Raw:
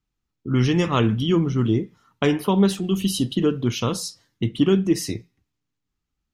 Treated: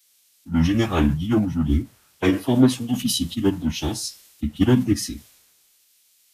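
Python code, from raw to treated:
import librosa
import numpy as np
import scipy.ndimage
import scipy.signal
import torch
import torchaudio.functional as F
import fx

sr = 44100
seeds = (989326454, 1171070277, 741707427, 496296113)

y = fx.quant_dither(x, sr, seeds[0], bits=8, dither='triangular')
y = fx.pitch_keep_formants(y, sr, semitones=-7.5)
y = fx.band_widen(y, sr, depth_pct=70)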